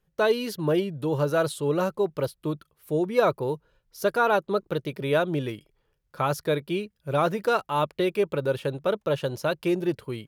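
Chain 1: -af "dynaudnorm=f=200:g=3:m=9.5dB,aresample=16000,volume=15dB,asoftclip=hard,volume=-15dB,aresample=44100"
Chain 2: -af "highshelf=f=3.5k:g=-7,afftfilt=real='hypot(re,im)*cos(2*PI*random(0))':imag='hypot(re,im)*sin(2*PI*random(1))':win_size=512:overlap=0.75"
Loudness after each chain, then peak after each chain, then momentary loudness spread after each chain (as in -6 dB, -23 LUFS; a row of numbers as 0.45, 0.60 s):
-21.0, -33.0 LUFS; -13.0, -14.5 dBFS; 6, 8 LU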